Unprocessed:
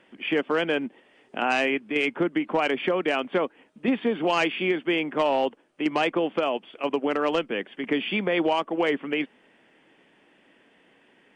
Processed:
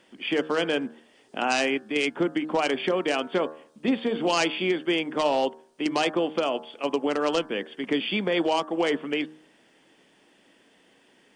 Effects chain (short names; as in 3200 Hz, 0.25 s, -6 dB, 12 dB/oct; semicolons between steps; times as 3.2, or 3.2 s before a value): resonant high shelf 3400 Hz +9 dB, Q 1.5; de-hum 77.63 Hz, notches 23